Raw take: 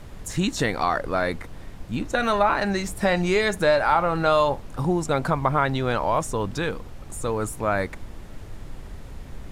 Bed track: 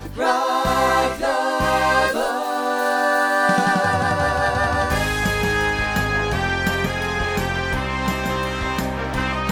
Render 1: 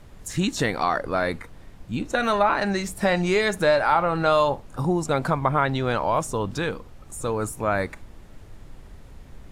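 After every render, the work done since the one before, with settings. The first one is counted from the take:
noise reduction from a noise print 6 dB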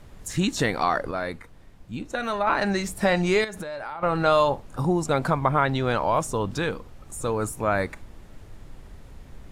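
0:01.11–0:02.47: clip gain −5.5 dB
0:03.44–0:04.03: downward compressor 16 to 1, threshold −30 dBFS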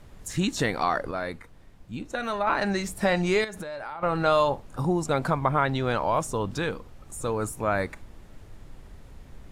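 level −2 dB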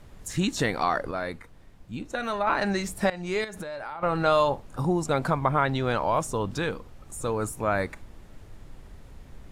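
0:03.10–0:03.59: fade in, from −18 dB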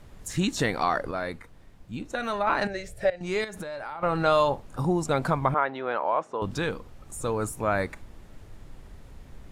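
0:02.67–0:03.21: drawn EQ curve 130 Hz 0 dB, 220 Hz −19 dB, 570 Hz +4 dB, 1,000 Hz −18 dB, 1,700 Hz −3 dB, 13,000 Hz −14 dB
0:05.54–0:06.42: band-pass filter 420–2,000 Hz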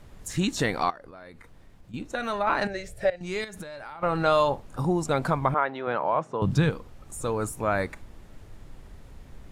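0:00.90–0:01.94: downward compressor 5 to 1, threshold −43 dBFS
0:03.16–0:04.02: parametric band 710 Hz −5 dB 2.7 octaves
0:05.87–0:06.70: parametric band 140 Hz +14.5 dB 1.1 octaves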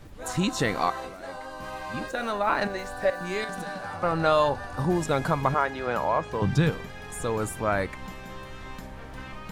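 mix in bed track −18.5 dB

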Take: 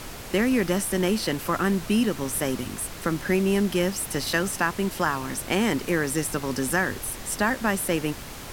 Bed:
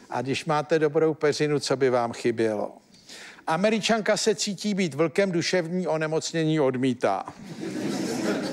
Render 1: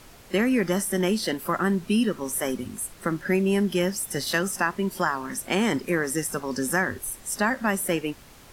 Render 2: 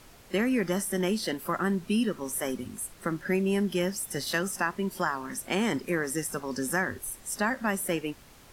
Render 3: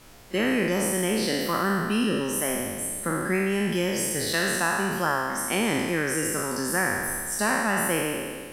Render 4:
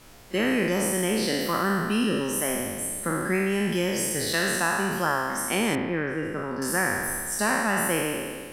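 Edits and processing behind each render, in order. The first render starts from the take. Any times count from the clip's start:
noise reduction from a noise print 11 dB
level −4 dB
peak hold with a decay on every bin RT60 1.83 s
0:05.75–0:06.62: high-frequency loss of the air 410 metres

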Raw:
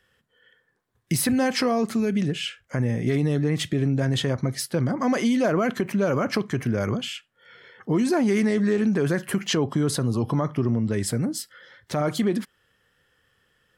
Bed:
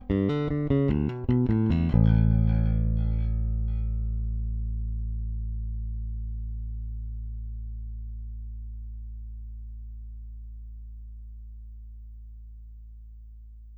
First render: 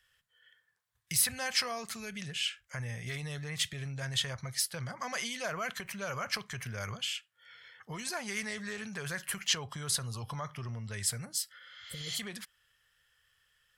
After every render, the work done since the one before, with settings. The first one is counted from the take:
0:11.63–0:12.14: healed spectral selection 570–7,400 Hz both
guitar amp tone stack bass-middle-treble 10-0-10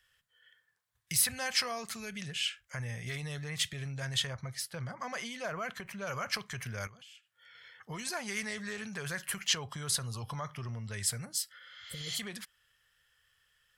0:04.27–0:06.07: high-shelf EQ 2,500 Hz −8 dB
0:06.87–0:07.55: downward compressor, threshold −53 dBFS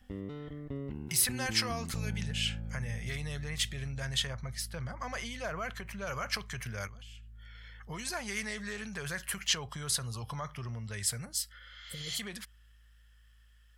mix in bed −16 dB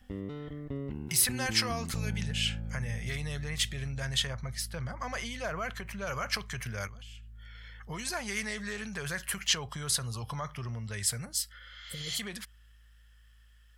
level +2 dB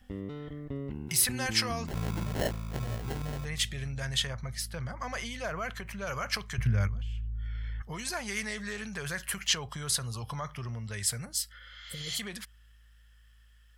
0:01.87–0:03.45: sample-rate reduction 1,200 Hz
0:06.58–0:07.82: bass and treble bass +14 dB, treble −9 dB

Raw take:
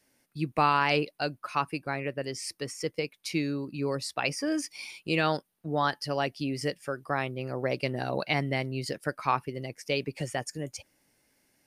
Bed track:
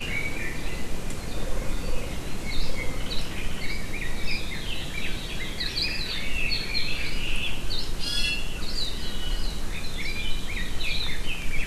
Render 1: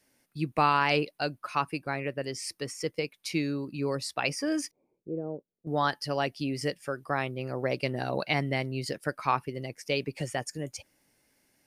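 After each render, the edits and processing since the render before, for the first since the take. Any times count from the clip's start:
0:04.71–0:05.67: transistor ladder low-pass 550 Hz, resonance 45%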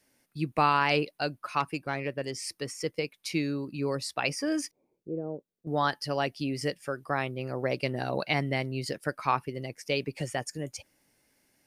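0:01.60–0:02.34: phase distortion by the signal itself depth 0.057 ms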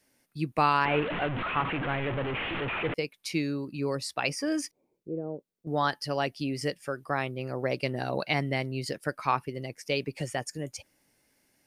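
0:00.85–0:02.94: linear delta modulator 16 kbit/s, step −25.5 dBFS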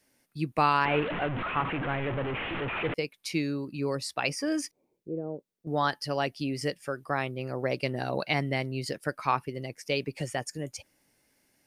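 0:01.11–0:02.76: high-shelf EQ 5,400 Hz −11.5 dB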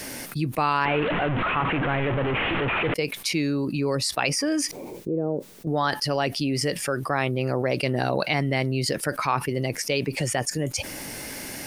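envelope flattener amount 70%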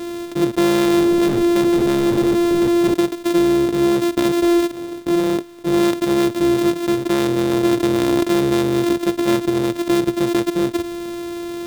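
samples sorted by size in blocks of 128 samples
hollow resonant body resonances 350/3,600 Hz, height 12 dB, ringing for 20 ms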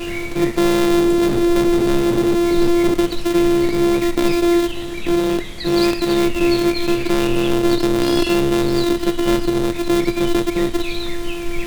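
mix in bed track 0 dB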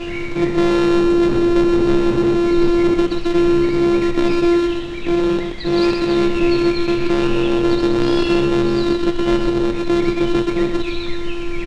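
high-frequency loss of the air 110 metres
single-tap delay 127 ms −5.5 dB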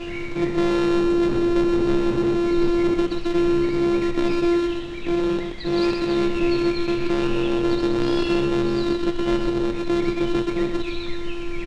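level −5 dB

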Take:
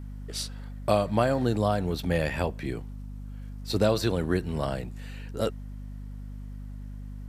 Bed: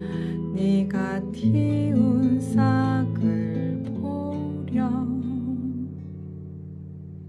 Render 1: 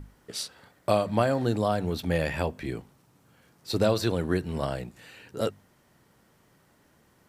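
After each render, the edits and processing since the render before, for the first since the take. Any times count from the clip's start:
mains-hum notches 50/100/150/200/250 Hz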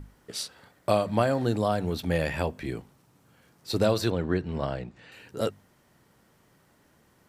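0:04.10–0:05.12: high-frequency loss of the air 130 metres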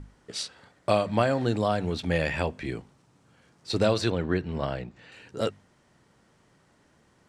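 dynamic equaliser 2,400 Hz, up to +4 dB, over −45 dBFS, Q 1.1
low-pass filter 8,900 Hz 24 dB per octave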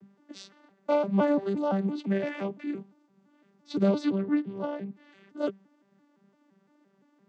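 vocoder with an arpeggio as carrier bare fifth, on G3, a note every 171 ms
pitch vibrato 2.1 Hz 14 cents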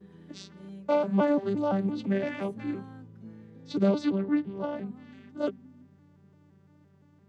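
mix in bed −23.5 dB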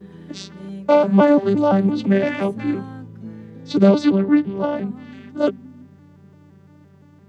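level +11 dB

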